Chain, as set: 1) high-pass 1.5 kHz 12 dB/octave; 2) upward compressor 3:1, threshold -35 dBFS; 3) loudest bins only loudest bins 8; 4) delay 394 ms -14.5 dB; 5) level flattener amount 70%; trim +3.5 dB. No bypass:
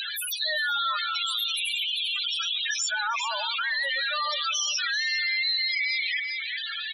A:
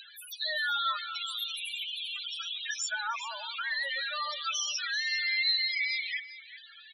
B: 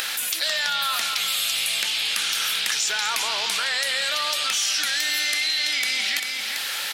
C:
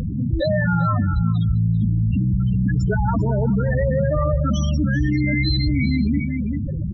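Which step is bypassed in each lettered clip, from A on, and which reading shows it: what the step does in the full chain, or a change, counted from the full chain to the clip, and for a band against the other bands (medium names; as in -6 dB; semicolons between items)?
5, crest factor change +3.0 dB; 3, 8 kHz band +5.5 dB; 1, 500 Hz band +23.0 dB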